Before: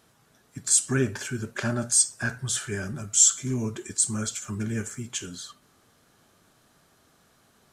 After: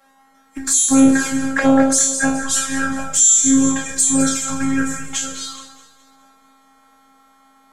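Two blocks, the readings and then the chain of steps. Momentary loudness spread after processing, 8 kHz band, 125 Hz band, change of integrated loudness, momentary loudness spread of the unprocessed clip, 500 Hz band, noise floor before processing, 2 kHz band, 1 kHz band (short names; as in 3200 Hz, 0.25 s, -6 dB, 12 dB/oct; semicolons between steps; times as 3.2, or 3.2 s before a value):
12 LU, +8.0 dB, -2.0 dB, +9.5 dB, 15 LU, +10.5 dB, -63 dBFS, +11.0 dB, +16.5 dB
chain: spectral trails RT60 0.57 s; dynamic EQ 2200 Hz, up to -4 dB, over -38 dBFS, Q 0.78; in parallel at +1 dB: compressor 5:1, threshold -38 dBFS, peak gain reduction 22.5 dB; on the sum: band shelf 1000 Hz +9 dB 2.4 oct; robotiser 269 Hz; envelope flanger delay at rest 5.3 ms, full sweep at -19 dBFS; resonator 53 Hz, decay 0.21 s, harmonics odd, mix 70%; on a send: echo with dull and thin repeats by turns 0.105 s, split 1000 Hz, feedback 73%, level -8.5 dB; on the sum: maximiser +19 dB; three-band expander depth 40%; gain -3 dB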